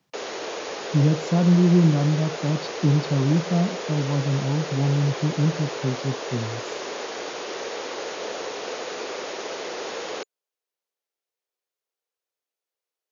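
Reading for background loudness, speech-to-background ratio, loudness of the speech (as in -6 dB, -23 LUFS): -31.5 LUFS, 9.0 dB, -22.5 LUFS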